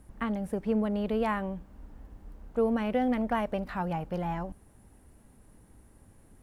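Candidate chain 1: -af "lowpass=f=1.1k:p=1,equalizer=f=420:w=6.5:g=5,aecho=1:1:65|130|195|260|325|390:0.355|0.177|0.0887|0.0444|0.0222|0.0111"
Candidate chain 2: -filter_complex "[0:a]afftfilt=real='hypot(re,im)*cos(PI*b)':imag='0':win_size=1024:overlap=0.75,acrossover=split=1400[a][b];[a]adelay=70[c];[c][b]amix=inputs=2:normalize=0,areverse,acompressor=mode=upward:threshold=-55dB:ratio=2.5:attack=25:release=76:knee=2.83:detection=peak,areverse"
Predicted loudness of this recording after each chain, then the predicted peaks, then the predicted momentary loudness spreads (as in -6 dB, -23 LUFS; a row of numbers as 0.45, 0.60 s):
-30.5, -36.0 LUFS; -15.5, -21.0 dBFS; 10, 8 LU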